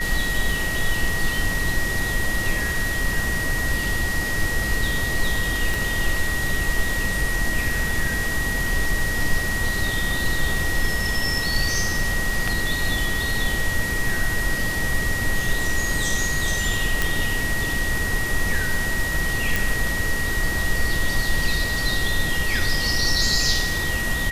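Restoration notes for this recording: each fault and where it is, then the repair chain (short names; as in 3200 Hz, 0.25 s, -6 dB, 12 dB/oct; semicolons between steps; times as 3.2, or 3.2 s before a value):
tone 1900 Hz -25 dBFS
5.74 pop
17.02 pop
19.56 pop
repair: de-click; notch 1900 Hz, Q 30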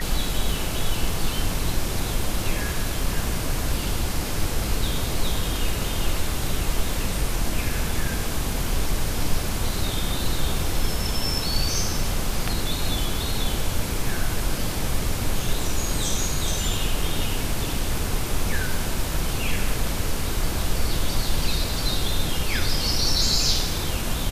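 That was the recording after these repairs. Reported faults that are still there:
5.74 pop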